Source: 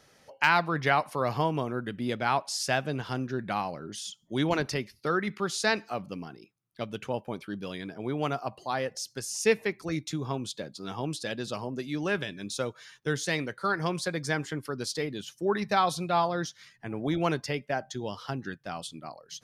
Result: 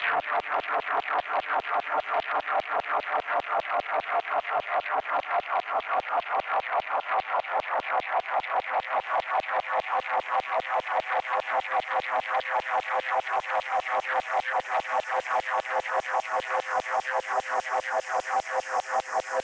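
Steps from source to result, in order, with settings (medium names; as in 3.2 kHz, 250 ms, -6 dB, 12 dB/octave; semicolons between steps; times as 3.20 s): FFT filter 220 Hz 0 dB, 680 Hz +6 dB, 1.8 kHz -4 dB, 3.8 kHz -26 dB, 7.4 kHz -3 dB, 12 kHz -26 dB; Paulstretch 27×, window 1.00 s, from 8.28 s; in parallel at -3 dB: sine folder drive 12 dB, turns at -15 dBFS; on the sum: LFO high-pass saw down 5 Hz 650–3700 Hz; distance through air 110 m; three bands compressed up and down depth 100%; trim -9 dB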